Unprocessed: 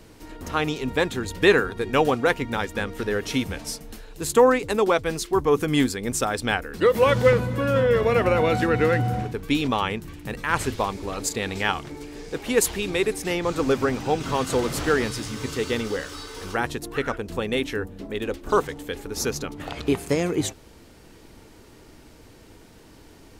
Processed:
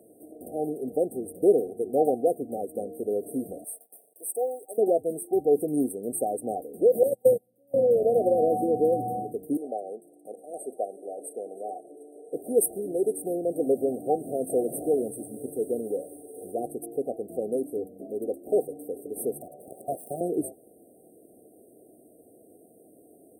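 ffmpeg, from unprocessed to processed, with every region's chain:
-filter_complex "[0:a]asettb=1/sr,asplit=3[a][b][c];[a]atrim=end=3.644[d];[b]atrim=start=3.64:end=4.78,asetpts=PTS-STARTPTS,afade=t=in:d=0.004:c=qsin,afade=t=out:st=1.136:d=0.004:c=qsin,highpass=930,acrusher=bits=7:mix=0:aa=0.5[e];[c]atrim=start=4.776[f];[d][e]acrossfade=d=0.004:c1=hsin:c2=qsin[g];[g][f]acrossfade=d=0.004:c1=qsin:c2=hsin,asettb=1/sr,asplit=3[h][i][j];[h]atrim=end=7.034[k];[i]atrim=start=7.03:end=7.74,asetpts=PTS-STARTPTS,afade=t=in:d=0.004:c=qsin,afade=t=out:st=0.706:d=0.004:c=qsin,agate=range=-36dB:threshold=-18dB:ratio=16:release=100:detection=peak,aemphasis=mode=production:type=50fm[l];[j]atrim=start=7.736[m];[k][l]acrossfade=d=0.004:c1=hsin:c2=qsin[n];[n][m]acrossfade=d=0.004:c1=qsin:c2=hsin,asettb=1/sr,asplit=3[o][p][q];[o]atrim=end=9.574[r];[p]atrim=start=9.57:end=12.33,asetpts=PTS-STARTPTS,afade=t=in:d=0.004:c=qsin,afade=t=out:st=2.756:d=0.004:c=qsin,highpass=480,lowpass=7.7k,asoftclip=type=hard:threshold=-8dB[s];[q]atrim=start=12.326[t];[r][s]acrossfade=d=0.004:c1=hsin:c2=qsin[u];[u][t]acrossfade=d=0.004:c1=qsin:c2=hsin,asettb=1/sr,asplit=3[v][w][x];[v]atrim=end=19.414[y];[w]atrim=start=19.41:end=20.21,asetpts=PTS-STARTPTS,afade=t=in:d=0.004:c=qsin,afade=t=out:st=0.796:d=0.004:c=qsin,highpass=f=120:p=1,aeval=exprs='abs(val(0))':c=same[z];[x]atrim=start=20.206[aa];[y][z]acrossfade=d=0.004:c1=hsin:c2=qsin[ab];[ab][aa]acrossfade=d=0.004:c1=qsin:c2=hsin,afftfilt=real='re*(1-between(b*sr/4096,770,8200))':imag='im*(1-between(b*sr/4096,770,8200))':win_size=4096:overlap=0.75,highpass=320"

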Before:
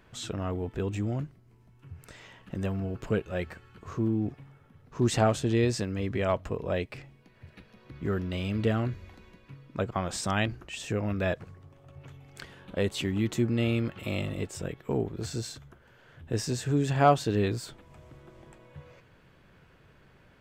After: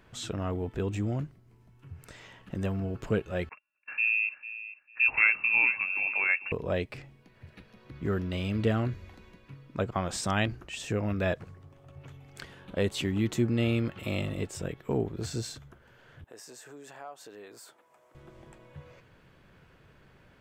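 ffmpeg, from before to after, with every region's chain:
-filter_complex "[0:a]asettb=1/sr,asplit=3[a][b][c];[a]atrim=end=3.494[d];[b]atrim=start=3.49:end=6.52,asetpts=PTS-STARTPTS,afade=t=in:d=0.004:c=qsin,afade=t=out:st=3.026:d=0.004:c=qsin,agate=range=-31dB:threshold=-45dB:ratio=16:release=100:detection=peak,aecho=1:1:448|896:0.2|0.0379,atrim=end_sample=133623,lowpass=f=2.4k:t=q:w=0.5098,lowpass=f=2.4k:t=q:w=0.6013,lowpass=f=2.4k:t=q:w=0.9,lowpass=f=2.4k:t=q:w=2.563,afreqshift=-2800[e];[c]atrim=start=6.516[f];[d][e]acrossfade=d=0.004:c1=hsin:c2=qsin[g];[g][f]acrossfade=d=0.004:c1=qsin:c2=hsin,asettb=1/sr,asplit=3[h][i][j];[h]atrim=end=16.244[k];[i]atrim=start=16.24:end=18.15,asetpts=PTS-STARTPTS,afade=t=in:d=0.004:c=qsin,afade=t=out:st=1.906:d=0.004:c=qsin,highpass=700,equalizer=f=3.5k:t=o:w=2.2:g=-10.5,acompressor=threshold=-46dB:ratio=3:attack=3.2:release=140:knee=1:detection=peak[l];[j]atrim=start=18.146[m];[k][l]acrossfade=d=0.004:c1=hsin:c2=qsin[n];[n][m]acrossfade=d=0.004:c1=qsin:c2=hsin"

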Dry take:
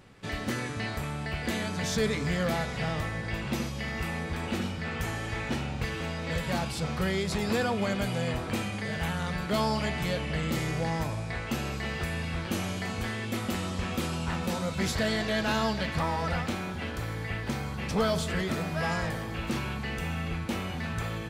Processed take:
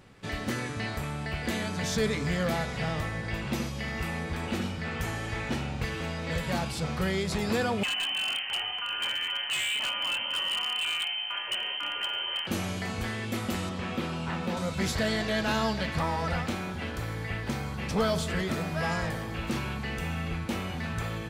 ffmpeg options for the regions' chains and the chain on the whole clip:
-filter_complex "[0:a]asettb=1/sr,asplit=3[a][b][c];[a]atrim=end=7.834[d];[b]atrim=start=7.83:end=12.47,asetpts=PTS-STARTPTS,afade=t=in:d=0.004:c=qsin,afade=t=out:st=4.636:d=0.004:c=qsin,lowpass=f=2.7k:t=q:w=0.5098,lowpass=f=2.7k:t=q:w=0.6013,lowpass=f=2.7k:t=q:w=0.9,lowpass=f=2.7k:t=q:w=2.563,afreqshift=-3200,aeval=exprs='0.0631*(abs(mod(val(0)/0.0631+3,4)-2)-1)':c=same[e];[c]atrim=start=12.466[f];[d][e]acrossfade=d=0.004:c1=hsin:c2=qsin[g];[g][f]acrossfade=d=0.004:c1=qsin:c2=hsin,asettb=1/sr,asplit=3[h][i][j];[h]atrim=end=13.694[k];[i]atrim=start=13.69:end=14.57,asetpts=PTS-STARTPTS,afade=t=in:d=0.004:c=qsin,afade=t=out:st=0.876:d=0.004:c=qsin,acrossover=split=4200[l][m];[m]acompressor=threshold=-56dB:ratio=4:attack=1:release=60[n];[l][n]amix=inputs=2:normalize=0,highpass=110[o];[j]atrim=start=14.566[p];[k][o]acrossfade=d=0.004:c1=hsin:c2=qsin[q];[q][p]acrossfade=d=0.004:c1=qsin:c2=hsin"

